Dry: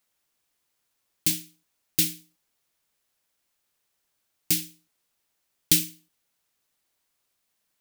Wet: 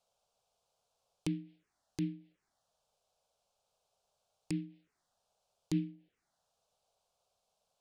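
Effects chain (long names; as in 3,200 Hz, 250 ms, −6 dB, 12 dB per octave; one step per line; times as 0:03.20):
Bessel low-pass filter 5,200 Hz, order 2
flat-topped bell 530 Hz +9 dB 1.3 octaves
treble cut that deepens with the level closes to 790 Hz, closed at −31.5 dBFS
brickwall limiter −20.5 dBFS, peak gain reduction 10.5 dB
phaser swept by the level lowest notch 320 Hz, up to 1,200 Hz, full sweep at −43 dBFS
level +1.5 dB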